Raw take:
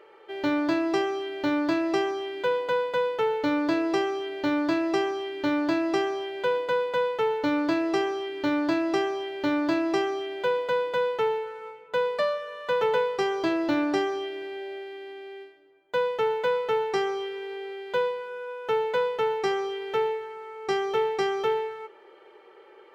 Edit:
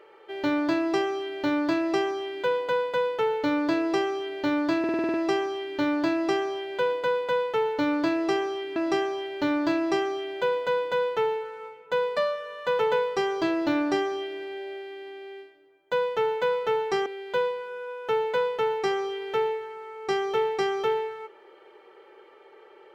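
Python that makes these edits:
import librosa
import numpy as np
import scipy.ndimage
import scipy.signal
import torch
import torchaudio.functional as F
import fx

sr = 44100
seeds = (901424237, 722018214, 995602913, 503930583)

y = fx.edit(x, sr, fx.stutter(start_s=4.79, slice_s=0.05, count=8),
    fx.cut(start_s=8.41, length_s=0.37),
    fx.cut(start_s=17.08, length_s=0.58), tone=tone)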